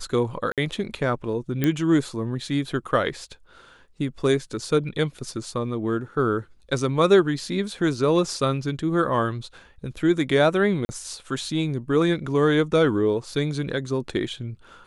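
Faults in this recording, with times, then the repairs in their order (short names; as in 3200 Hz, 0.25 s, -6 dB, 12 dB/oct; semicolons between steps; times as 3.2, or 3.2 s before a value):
0.52–0.58 gap 57 ms
1.64 pop -9 dBFS
10.85–10.89 gap 40 ms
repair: de-click; interpolate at 0.52, 57 ms; interpolate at 10.85, 40 ms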